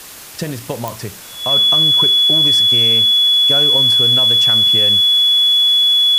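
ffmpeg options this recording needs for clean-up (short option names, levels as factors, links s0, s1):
-af "adeclick=t=4,bandreject=f=3400:w=30,afwtdn=0.02"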